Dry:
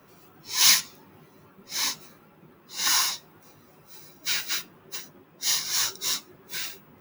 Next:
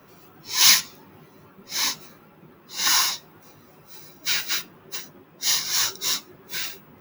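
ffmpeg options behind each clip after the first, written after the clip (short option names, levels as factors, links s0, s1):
-af "equalizer=f=8800:w=2.6:g=-5.5,volume=1.5"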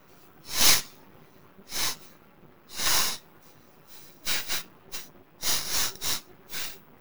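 -af "aeval=exprs='max(val(0),0)':c=same"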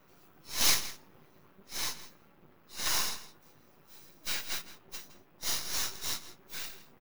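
-filter_complex "[0:a]asplit=2[s0][s1];[s1]adelay=163.3,volume=0.2,highshelf=f=4000:g=-3.67[s2];[s0][s2]amix=inputs=2:normalize=0,volume=0.473"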